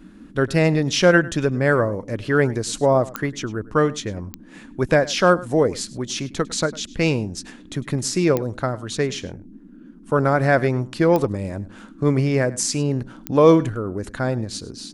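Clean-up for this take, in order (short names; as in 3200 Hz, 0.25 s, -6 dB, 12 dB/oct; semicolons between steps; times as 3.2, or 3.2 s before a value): de-click; noise print and reduce 22 dB; inverse comb 0.102 s -19.5 dB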